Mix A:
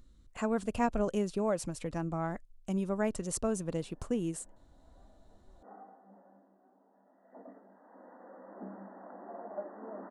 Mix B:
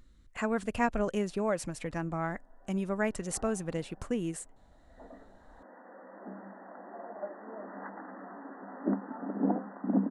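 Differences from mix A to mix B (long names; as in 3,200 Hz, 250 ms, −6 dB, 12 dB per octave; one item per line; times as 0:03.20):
background: entry −2.35 s
master: add parametric band 1,900 Hz +8 dB 1 octave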